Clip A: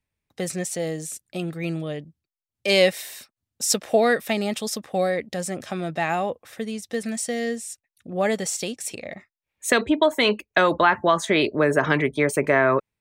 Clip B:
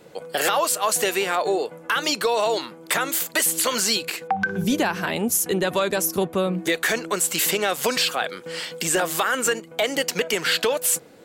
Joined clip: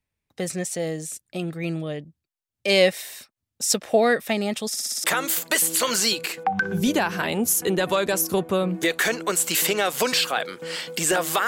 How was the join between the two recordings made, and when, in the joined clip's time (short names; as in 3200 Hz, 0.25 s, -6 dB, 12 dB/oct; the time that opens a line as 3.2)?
clip A
4.68 stutter in place 0.06 s, 6 plays
5.04 switch to clip B from 2.88 s